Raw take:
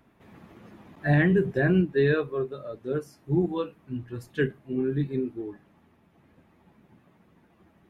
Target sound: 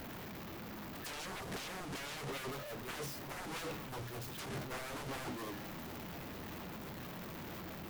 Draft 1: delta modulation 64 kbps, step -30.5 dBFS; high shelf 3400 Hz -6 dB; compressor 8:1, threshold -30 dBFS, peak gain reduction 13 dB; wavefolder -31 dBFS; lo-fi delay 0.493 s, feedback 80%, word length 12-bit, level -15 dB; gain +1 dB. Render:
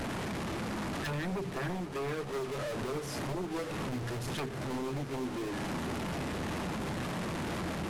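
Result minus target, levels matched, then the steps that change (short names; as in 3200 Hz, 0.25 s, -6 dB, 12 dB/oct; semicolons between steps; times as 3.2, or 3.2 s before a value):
wavefolder: distortion -12 dB; 8000 Hz band -4.5 dB
change: wavefolder -40.5 dBFS; remove: high shelf 3400 Hz -6 dB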